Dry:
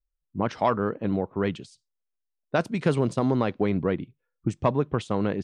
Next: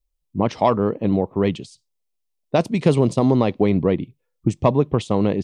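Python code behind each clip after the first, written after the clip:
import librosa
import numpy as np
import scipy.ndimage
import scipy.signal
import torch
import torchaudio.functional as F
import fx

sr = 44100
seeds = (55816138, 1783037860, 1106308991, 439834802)

y = fx.peak_eq(x, sr, hz=1500.0, db=-12.5, octaves=0.55)
y = y * 10.0 ** (7.0 / 20.0)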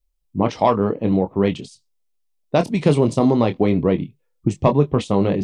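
y = fx.chorus_voices(x, sr, voices=6, hz=0.39, base_ms=24, depth_ms=3.9, mix_pct=30)
y = y * 10.0 ** (3.5 / 20.0)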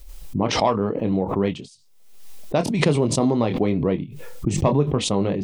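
y = fx.pre_swell(x, sr, db_per_s=54.0)
y = y * 10.0 ** (-4.0 / 20.0)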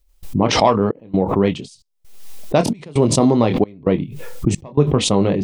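y = fx.step_gate(x, sr, bpm=66, pattern='.xxx.xxx.xxx', floor_db=-24.0, edge_ms=4.5)
y = y * 10.0 ** (5.5 / 20.0)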